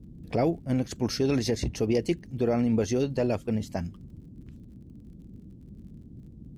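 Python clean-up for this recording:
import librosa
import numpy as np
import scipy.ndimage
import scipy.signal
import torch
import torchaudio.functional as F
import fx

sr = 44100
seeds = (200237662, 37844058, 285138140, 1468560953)

y = fx.fix_declick_ar(x, sr, threshold=6.5)
y = fx.noise_reduce(y, sr, print_start_s=4.65, print_end_s=5.15, reduce_db=25.0)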